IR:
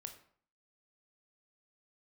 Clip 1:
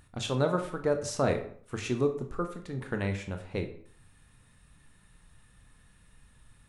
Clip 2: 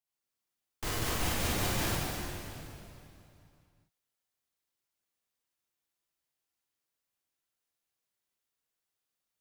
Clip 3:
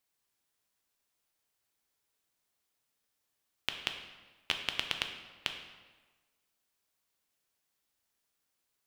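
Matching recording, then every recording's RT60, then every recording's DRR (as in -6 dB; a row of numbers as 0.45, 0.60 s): 1; 0.55, 2.8, 1.3 s; 5.5, -7.5, 4.5 dB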